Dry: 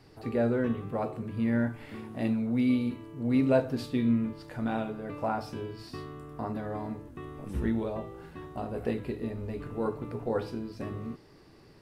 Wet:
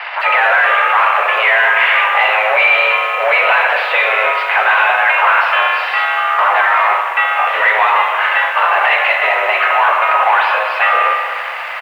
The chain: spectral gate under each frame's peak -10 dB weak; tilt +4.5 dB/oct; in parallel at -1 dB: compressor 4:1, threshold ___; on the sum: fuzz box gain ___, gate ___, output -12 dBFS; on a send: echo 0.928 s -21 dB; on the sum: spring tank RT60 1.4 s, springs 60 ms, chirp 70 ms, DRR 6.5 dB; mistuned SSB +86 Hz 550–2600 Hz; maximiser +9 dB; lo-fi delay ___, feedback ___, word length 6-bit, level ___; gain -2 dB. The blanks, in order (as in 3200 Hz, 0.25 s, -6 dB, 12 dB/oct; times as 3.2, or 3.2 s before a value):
-49 dBFS, 45 dB, -54 dBFS, 0.197 s, 55%, -12 dB